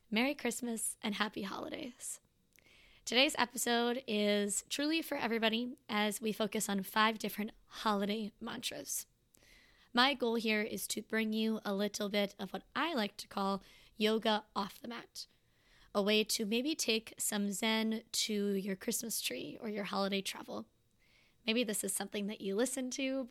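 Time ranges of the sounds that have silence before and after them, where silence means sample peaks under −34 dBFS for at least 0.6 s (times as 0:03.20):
0:03.07–0:09.00
0:09.95–0:15.20
0:15.95–0:20.59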